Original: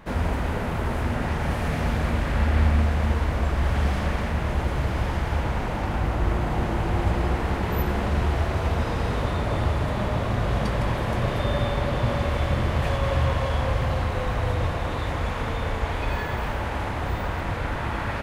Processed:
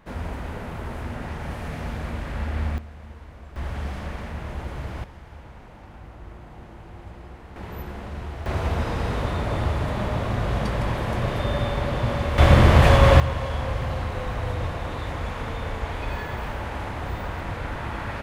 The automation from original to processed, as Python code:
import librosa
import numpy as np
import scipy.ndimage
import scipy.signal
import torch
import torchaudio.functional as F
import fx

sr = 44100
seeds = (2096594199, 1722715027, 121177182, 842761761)

y = fx.gain(x, sr, db=fx.steps((0.0, -6.5), (2.78, -19.0), (3.56, -7.5), (5.04, -18.0), (7.56, -10.5), (8.46, -0.5), (12.38, 10.0), (13.2, -3.0)))